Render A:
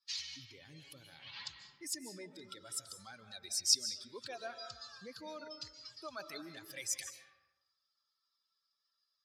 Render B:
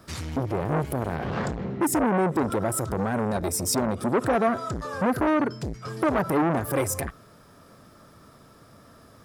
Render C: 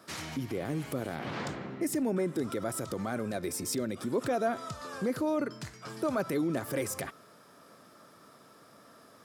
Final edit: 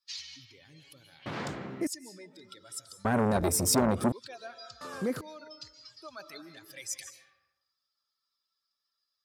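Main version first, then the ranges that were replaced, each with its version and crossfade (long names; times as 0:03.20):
A
0:01.26–0:01.87: punch in from C
0:03.05–0:04.12: punch in from B
0:04.81–0:05.21: punch in from C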